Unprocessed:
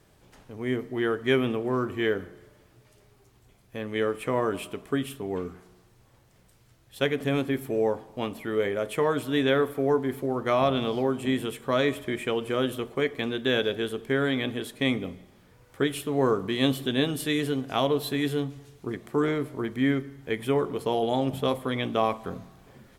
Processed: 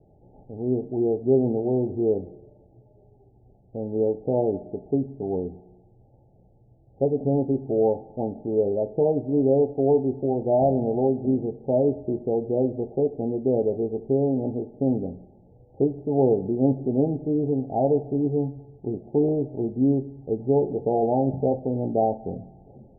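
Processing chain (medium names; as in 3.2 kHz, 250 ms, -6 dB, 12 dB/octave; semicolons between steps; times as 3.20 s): Chebyshev low-pass 860 Hz, order 10; trim +4.5 dB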